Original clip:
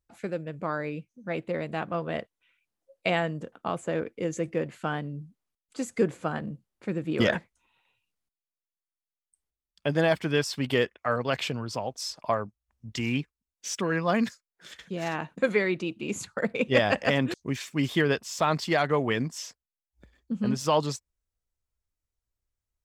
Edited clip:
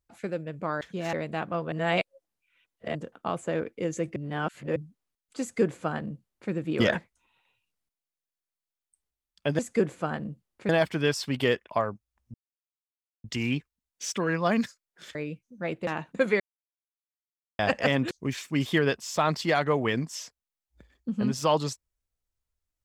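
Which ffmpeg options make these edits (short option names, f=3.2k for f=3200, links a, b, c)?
-filter_complex "[0:a]asplit=15[a][b][c][d][e][f][g][h][i][j][k][l][m][n][o];[a]atrim=end=0.812[p];[b]atrim=start=14.778:end=15.102[q];[c]atrim=start=1.528:end=2.122[r];[d]atrim=start=2.118:end=3.352,asetpts=PTS-STARTPTS,areverse[s];[e]atrim=start=3.348:end=4.562[t];[f]atrim=start=4.558:end=5.162,asetpts=PTS-STARTPTS,areverse[u];[g]atrim=start=5.158:end=9.992[v];[h]atrim=start=5.808:end=6.912[w];[i]atrim=start=9.988:end=10.992[x];[j]atrim=start=12.218:end=12.87,asetpts=PTS-STARTPTS,afade=t=out:st=0.648:d=0.004:c=hsin,apad=pad_dur=0.9[y];[k]atrim=start=12.87:end=14.782,asetpts=PTS-STARTPTS,afade=t=in:d=0.004:c=hsin[z];[l]atrim=start=0.808:end=1.532[aa];[m]atrim=start=15.098:end=15.63,asetpts=PTS-STARTPTS,afade=t=out:st=0.528:d=0.004:c=hsin[ab];[n]atrim=start=15.63:end=16.82,asetpts=PTS-STARTPTS,volume=0[ac];[o]atrim=start=16.82,asetpts=PTS-STARTPTS,afade=t=in:d=0.004:c=hsin[ad];[p][q]acrossfade=d=0.004:c1=hsin:c2=hsin[ae];[ae][r]acrossfade=d=0.004:c1=hsin:c2=hsin[af];[af][s]acrossfade=d=0.004:c1=hsin:c2=hsin[ag];[ag][t]acrossfade=d=0.004:c1=hsin:c2=hsin[ah];[ah][u]acrossfade=d=0.004:c1=hsin:c2=hsin[ai];[ai][v]acrossfade=d=0.004:c1=hsin:c2=hsin[aj];[aj][w]acrossfade=d=0.004:c1=hsin:c2=hsin[ak];[ak][x]acrossfade=d=0.004:c1=hsin:c2=hsin[al];[y][z]concat=n=2:v=0:a=1[am];[al][am]acrossfade=d=0.004:c1=hsin:c2=hsin[an];[an][aa]acrossfade=d=0.004:c1=hsin:c2=hsin[ao];[ab][ac][ad]concat=n=3:v=0:a=1[ap];[ao][ap]acrossfade=d=0.004:c1=hsin:c2=hsin"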